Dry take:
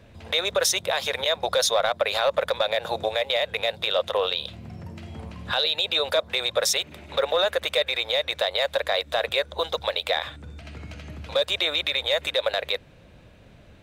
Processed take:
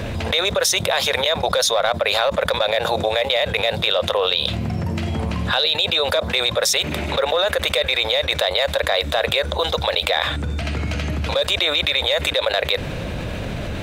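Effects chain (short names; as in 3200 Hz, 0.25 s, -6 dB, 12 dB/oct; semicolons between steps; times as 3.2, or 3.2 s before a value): fast leveller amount 70%; gain +1.5 dB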